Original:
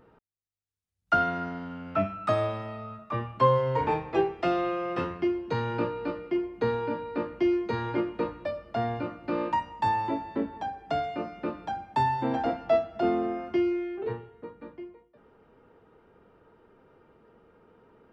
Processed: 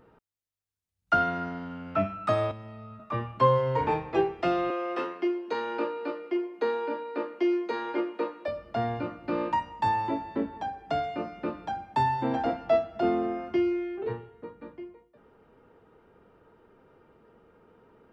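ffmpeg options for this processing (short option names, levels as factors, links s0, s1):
-filter_complex "[0:a]asettb=1/sr,asplit=3[s0][s1][s2];[s0]atrim=end=2.514[s3];[s1]atrim=start=2.51:end=3,asetpts=PTS-STARTPTS,afade=t=in:d=0.004:c=qsin,afade=t=out:st=0.486:d=0.004:c=qsin,acrossover=split=300|1800[s4][s5][s6];[s4]acompressor=threshold=0.00794:ratio=4[s7];[s5]acompressor=threshold=0.00355:ratio=4[s8];[s6]acompressor=threshold=0.001:ratio=4[s9];[s7][s8][s9]amix=inputs=3:normalize=0[s10];[s2]atrim=start=2.996[s11];[s3][s10]acrossfade=d=0.004:c1=hsin:c2=qsin[s12];[s12][s11]acrossfade=d=0.004:c1=qsin:c2=hsin,asettb=1/sr,asplit=3[s13][s14][s15];[s13]atrim=end=4.704[s16];[s14]atrim=start=4.7:end=8.48,asetpts=PTS-STARTPTS,afade=t=in:d=0.004:c=qsin,afade=t=out:st=3.776:d=0.004:c=qsin,highpass=f=290:w=0.5412,highpass=f=290:w=1.3066[s17];[s15]atrim=start=8.476[s18];[s16][s17]acrossfade=d=0.004:c1=hsin:c2=qsin[s19];[s19][s18]acrossfade=d=0.004:c1=qsin:c2=hsin"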